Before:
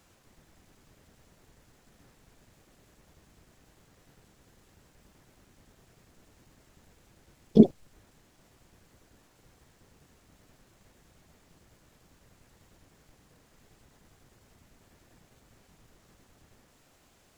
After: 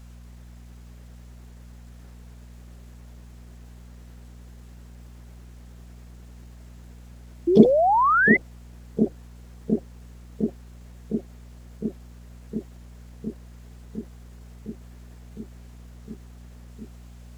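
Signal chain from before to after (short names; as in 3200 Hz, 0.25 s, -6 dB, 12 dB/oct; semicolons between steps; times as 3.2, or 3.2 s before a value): low shelf 140 Hz -10.5 dB; darkening echo 0.709 s, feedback 83%, low-pass 980 Hz, level -6 dB; painted sound rise, 7.47–8.37, 330–2100 Hz -24 dBFS; buzz 60 Hz, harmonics 4, -50 dBFS -7 dB/oct; gain +5.5 dB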